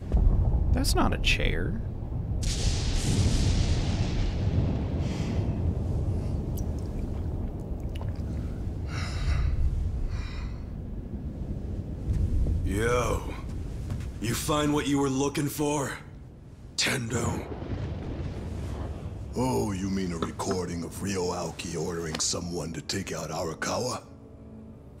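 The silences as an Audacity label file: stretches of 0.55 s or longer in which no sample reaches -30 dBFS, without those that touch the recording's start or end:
15.960000	16.780000	silence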